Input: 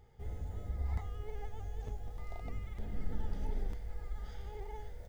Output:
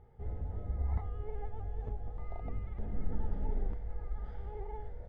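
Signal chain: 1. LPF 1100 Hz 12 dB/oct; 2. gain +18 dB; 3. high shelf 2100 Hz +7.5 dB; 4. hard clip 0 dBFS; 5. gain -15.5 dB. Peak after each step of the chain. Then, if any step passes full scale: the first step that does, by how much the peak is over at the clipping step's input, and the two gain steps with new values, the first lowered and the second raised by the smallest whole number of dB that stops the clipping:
-23.0, -5.0, -5.0, -5.0, -20.5 dBFS; no overload

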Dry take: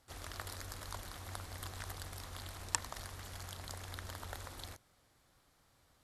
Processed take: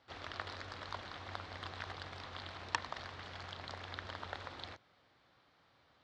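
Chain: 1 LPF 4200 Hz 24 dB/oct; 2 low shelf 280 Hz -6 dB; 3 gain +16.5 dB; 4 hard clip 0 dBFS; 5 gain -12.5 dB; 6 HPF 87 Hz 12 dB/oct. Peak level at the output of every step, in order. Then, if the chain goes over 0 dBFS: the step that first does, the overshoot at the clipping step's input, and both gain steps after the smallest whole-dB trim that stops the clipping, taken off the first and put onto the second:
-19.5, -19.0, -2.5, -2.5, -15.0, -14.5 dBFS; no overload

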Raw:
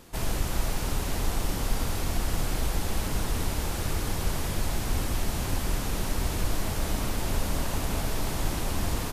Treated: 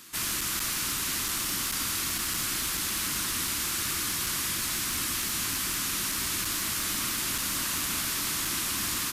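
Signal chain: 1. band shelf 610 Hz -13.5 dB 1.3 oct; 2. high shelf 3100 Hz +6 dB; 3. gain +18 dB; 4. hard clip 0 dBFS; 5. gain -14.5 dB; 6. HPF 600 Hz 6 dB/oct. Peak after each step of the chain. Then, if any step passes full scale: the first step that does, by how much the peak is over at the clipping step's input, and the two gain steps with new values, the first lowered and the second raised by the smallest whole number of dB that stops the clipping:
-13.0, -12.5, +5.5, 0.0, -14.5, -17.0 dBFS; step 3, 5.5 dB; step 3 +12 dB, step 5 -8.5 dB

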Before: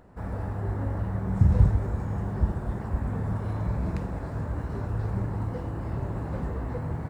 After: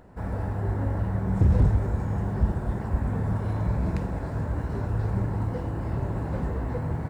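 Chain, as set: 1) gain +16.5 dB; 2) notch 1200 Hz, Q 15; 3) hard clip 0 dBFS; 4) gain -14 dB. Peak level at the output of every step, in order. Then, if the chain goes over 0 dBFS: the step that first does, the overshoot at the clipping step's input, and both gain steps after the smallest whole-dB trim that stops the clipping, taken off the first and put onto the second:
+9.5, +9.5, 0.0, -14.0 dBFS; step 1, 9.5 dB; step 1 +6.5 dB, step 4 -4 dB

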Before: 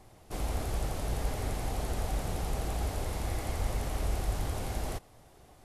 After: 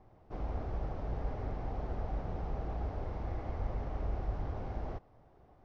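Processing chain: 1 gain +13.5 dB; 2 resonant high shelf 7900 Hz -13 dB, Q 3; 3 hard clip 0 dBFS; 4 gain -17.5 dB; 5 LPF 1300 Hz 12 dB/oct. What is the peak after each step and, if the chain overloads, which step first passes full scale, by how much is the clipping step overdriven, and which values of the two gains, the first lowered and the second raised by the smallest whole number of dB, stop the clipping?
-4.5, -4.5, -4.5, -22.0, -22.5 dBFS; no overload

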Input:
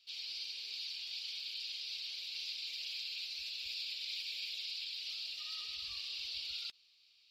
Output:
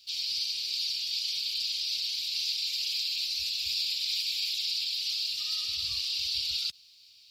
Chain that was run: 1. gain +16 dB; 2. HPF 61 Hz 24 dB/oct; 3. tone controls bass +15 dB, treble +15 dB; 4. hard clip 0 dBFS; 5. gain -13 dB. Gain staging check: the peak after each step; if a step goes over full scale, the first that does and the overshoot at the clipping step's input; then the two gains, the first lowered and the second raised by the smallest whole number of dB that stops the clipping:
-13.0, -13.0, -5.5, -5.5, -18.5 dBFS; no overload

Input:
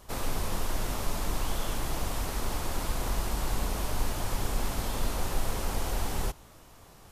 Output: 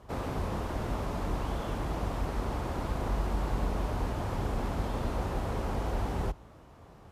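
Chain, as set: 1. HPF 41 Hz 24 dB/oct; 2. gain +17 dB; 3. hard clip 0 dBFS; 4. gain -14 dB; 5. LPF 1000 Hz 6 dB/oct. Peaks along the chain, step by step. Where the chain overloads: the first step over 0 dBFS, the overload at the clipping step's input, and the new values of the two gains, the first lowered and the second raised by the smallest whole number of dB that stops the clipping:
-20.0, -3.0, -3.0, -17.0, -18.5 dBFS; no overload

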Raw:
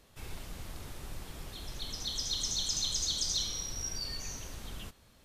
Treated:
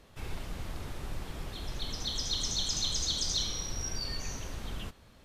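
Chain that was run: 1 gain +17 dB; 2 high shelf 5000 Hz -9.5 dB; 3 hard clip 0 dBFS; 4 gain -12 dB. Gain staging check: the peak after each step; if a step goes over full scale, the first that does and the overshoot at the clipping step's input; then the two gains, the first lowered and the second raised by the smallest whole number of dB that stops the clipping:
-3.0, -6.0, -6.0, -18.0 dBFS; no overload

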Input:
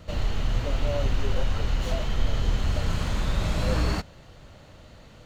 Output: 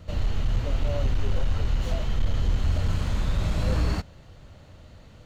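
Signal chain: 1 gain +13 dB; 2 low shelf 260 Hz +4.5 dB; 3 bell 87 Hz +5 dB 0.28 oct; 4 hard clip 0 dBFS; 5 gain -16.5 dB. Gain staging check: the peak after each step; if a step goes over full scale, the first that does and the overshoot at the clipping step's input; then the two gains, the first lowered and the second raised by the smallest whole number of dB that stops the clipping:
+1.0, +5.0, +5.5, 0.0, -16.5 dBFS; step 1, 5.5 dB; step 1 +7 dB, step 5 -10.5 dB

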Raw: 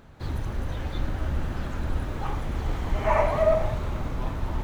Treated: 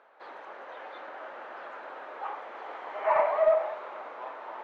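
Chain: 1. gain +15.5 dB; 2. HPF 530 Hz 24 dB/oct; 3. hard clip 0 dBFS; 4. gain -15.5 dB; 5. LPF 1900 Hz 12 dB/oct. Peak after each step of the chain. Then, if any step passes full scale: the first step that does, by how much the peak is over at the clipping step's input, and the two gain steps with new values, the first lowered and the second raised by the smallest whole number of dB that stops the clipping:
+5.5, +3.5, 0.0, -15.5, -15.0 dBFS; step 1, 3.5 dB; step 1 +11.5 dB, step 4 -11.5 dB

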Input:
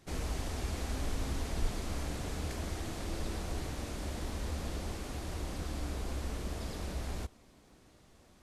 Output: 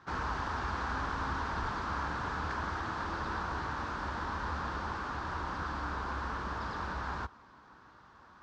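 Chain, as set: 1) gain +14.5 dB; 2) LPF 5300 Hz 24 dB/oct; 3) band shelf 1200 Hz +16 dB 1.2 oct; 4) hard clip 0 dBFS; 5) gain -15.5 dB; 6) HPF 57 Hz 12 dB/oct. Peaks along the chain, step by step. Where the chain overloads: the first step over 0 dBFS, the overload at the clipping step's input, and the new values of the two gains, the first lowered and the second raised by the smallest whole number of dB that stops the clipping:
-5.5, -6.0, -2.5, -2.5, -18.0, -22.5 dBFS; no overload

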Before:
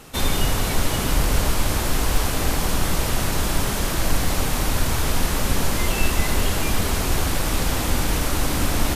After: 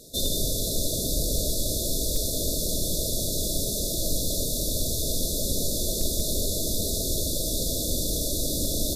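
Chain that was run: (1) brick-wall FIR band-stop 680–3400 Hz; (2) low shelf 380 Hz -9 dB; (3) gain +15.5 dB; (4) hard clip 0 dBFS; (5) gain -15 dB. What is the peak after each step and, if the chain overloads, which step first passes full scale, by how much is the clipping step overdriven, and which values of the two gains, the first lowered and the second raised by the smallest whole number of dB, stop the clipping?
-6.0, -12.0, +3.5, 0.0, -15.0 dBFS; step 3, 3.5 dB; step 3 +11.5 dB, step 5 -11 dB

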